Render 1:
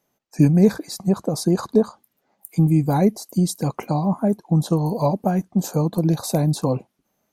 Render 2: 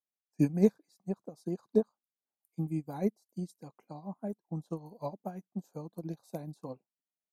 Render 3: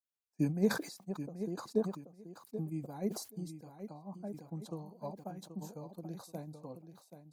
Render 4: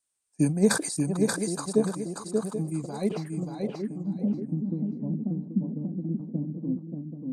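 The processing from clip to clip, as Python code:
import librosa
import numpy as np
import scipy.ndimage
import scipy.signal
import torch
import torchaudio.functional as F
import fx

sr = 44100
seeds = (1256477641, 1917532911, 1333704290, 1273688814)

y1 = scipy.signal.sosfilt(scipy.signal.butter(2, 160.0, 'highpass', fs=sr, output='sos'), x)
y1 = fx.upward_expand(y1, sr, threshold_db=-30.0, expansion=2.5)
y1 = F.gain(torch.from_numpy(y1), -6.5).numpy()
y2 = fx.echo_feedback(y1, sr, ms=781, feedback_pct=15, wet_db=-10.5)
y2 = fx.sustainer(y2, sr, db_per_s=95.0)
y2 = F.gain(torch.from_numpy(y2), -5.5).numpy()
y3 = fx.filter_sweep_lowpass(y2, sr, from_hz=8800.0, to_hz=250.0, start_s=2.77, end_s=3.91, q=7.8)
y3 = fx.echo_feedback(y3, sr, ms=583, feedback_pct=19, wet_db=-4.0)
y3 = F.gain(torch.from_numpy(y3), 8.0).numpy()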